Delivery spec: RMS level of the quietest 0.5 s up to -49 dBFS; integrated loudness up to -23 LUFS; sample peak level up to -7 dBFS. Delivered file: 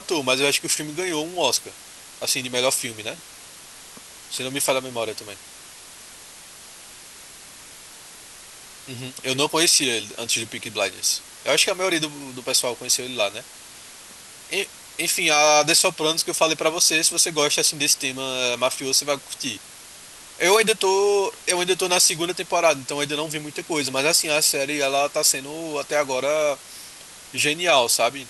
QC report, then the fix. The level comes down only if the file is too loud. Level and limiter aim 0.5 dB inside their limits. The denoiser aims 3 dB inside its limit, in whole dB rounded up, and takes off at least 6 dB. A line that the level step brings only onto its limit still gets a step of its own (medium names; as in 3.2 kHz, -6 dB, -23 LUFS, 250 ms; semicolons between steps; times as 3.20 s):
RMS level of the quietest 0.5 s -43 dBFS: fail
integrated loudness -20.5 LUFS: fail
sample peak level -5.0 dBFS: fail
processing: noise reduction 6 dB, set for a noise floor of -43 dBFS; trim -3 dB